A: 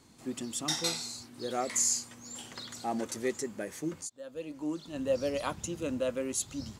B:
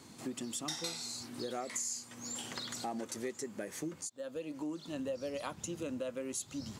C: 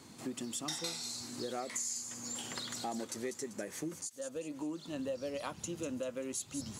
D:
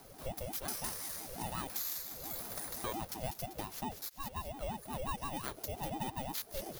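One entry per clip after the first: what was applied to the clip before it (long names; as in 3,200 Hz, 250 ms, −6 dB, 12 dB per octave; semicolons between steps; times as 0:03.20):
high-pass filter 100 Hz; downward compressor 4 to 1, threshold −44 dBFS, peak gain reduction 16.5 dB; level +5.5 dB
delay with a high-pass on its return 195 ms, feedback 44%, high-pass 4,500 Hz, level −6.5 dB
samples in bit-reversed order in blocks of 16 samples; ring modulator whose carrier an LFO sweeps 410 Hz, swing 40%, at 5.7 Hz; level +2.5 dB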